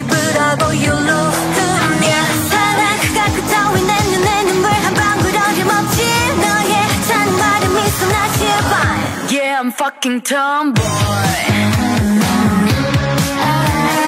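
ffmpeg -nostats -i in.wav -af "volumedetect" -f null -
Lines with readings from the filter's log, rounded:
mean_volume: -13.9 dB
max_volume: -1.1 dB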